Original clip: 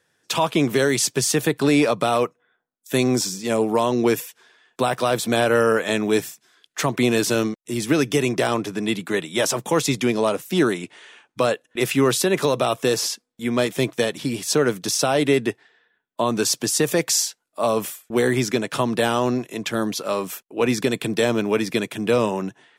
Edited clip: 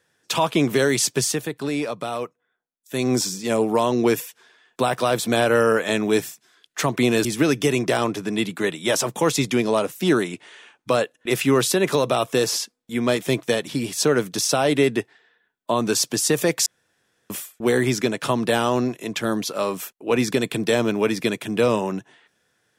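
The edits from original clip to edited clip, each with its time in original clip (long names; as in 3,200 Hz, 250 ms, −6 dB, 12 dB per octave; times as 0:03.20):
0:01.21–0:03.14: duck −8 dB, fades 0.22 s
0:07.25–0:07.75: remove
0:17.16–0:17.80: fill with room tone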